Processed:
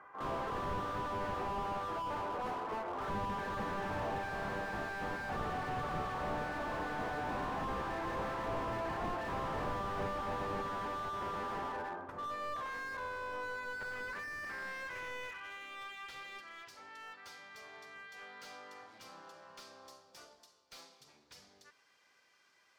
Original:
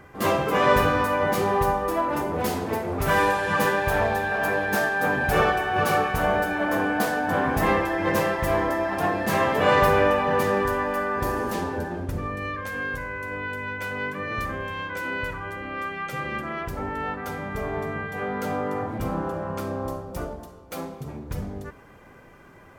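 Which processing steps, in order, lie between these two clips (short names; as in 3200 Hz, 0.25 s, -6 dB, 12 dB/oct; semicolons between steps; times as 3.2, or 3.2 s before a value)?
band-pass sweep 1100 Hz -> 4800 Hz, 13.42–16.5; dynamic EQ 1800 Hz, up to +6 dB, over -49 dBFS, Q 6.6; slew limiter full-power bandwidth 13 Hz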